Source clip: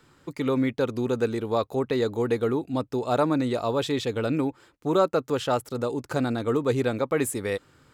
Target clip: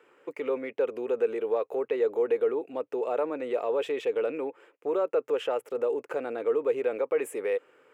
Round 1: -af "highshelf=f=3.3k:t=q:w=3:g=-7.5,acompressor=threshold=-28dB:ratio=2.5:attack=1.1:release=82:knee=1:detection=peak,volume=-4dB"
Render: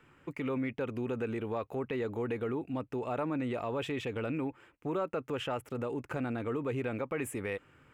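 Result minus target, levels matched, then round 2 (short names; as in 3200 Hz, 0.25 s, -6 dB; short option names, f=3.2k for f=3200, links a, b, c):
500 Hz band -3.0 dB
-af "highshelf=f=3.3k:t=q:w=3:g=-7.5,acompressor=threshold=-28dB:ratio=2.5:attack=1.1:release=82:knee=1:detection=peak,highpass=f=460:t=q:w=3.8,volume=-4dB"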